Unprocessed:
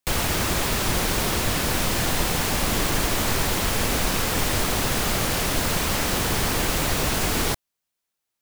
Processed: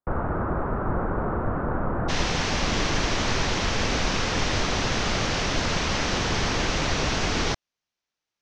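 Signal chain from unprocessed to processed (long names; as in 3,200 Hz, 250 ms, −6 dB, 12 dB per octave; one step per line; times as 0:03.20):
Chebyshev low-pass filter 1,400 Hz, order 4, from 0:02.08 6,100 Hz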